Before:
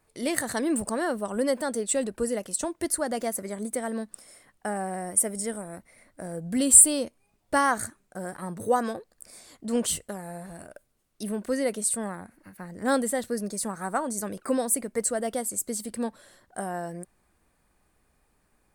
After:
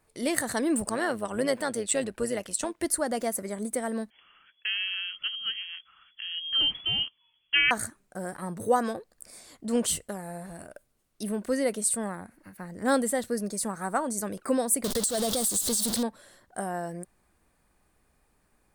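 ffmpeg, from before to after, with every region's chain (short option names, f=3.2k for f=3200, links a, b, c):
-filter_complex "[0:a]asettb=1/sr,asplit=3[a][b][c];[a]atrim=end=0.884[d];[b]atrim=start=0.88:end=2.83,asetpts=PTS-STARTPTS,afade=t=in:d=0.004:c=qsin,afade=t=out:st=1.946:d=0.004:c=qsin,equalizer=f=2.5k:w=0.67:g=6.5,tremolo=f=110:d=0.519[e];[c]atrim=start=2.826[f];[d][e]acrossfade=d=0.004:c1=hsin:c2=qsin[g];[g][f]acrossfade=d=0.004:c1=qsin:c2=hsin,asettb=1/sr,asplit=3[h][i][j];[h]atrim=end=4.104[k];[i]atrim=start=4.1:end=7.71,asetpts=PTS-STARTPTS,afade=t=in:d=0.004:c=qsin,afade=t=out:st=3.606:d=0.004:c=qsin,lowpass=f=2.9k:t=q:w=0.5098,lowpass=f=2.9k:t=q:w=0.6013,lowpass=f=2.9k:t=q:w=0.9,lowpass=f=2.9k:t=q:w=2.563,afreqshift=-3400,asubboost=boost=7:cutoff=240[l];[j]atrim=start=7.706[m];[k][l]acrossfade=d=0.004:c1=hsin:c2=qsin[n];[n][m]acrossfade=d=0.004:c1=qsin:c2=hsin,asettb=1/sr,asplit=3[o][p][q];[o]atrim=end=14.844[r];[p]atrim=start=14.84:end=16.03,asetpts=PTS-STARTPTS,afade=t=in:d=0.004:c=qsin,afade=t=out:st=1.186:d=0.004:c=qsin,aeval=exprs='val(0)+0.5*0.0422*sgn(val(0))':c=same,highshelf=f=3k:t=q:w=3:g=7.5,acompressor=threshold=-23dB:ratio=16:attack=3.2:release=140:knee=1:detection=peak[s];[q]atrim=start=16.026[t];[r][s]acrossfade=d=0.004:c1=hsin:c2=qsin[u];[u][t]acrossfade=d=0.004:c1=qsin:c2=hsin"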